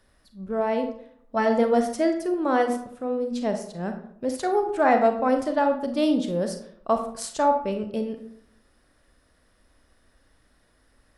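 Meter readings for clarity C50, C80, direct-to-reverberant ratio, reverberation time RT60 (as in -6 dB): 8.0 dB, 11.0 dB, 6.0 dB, 0.65 s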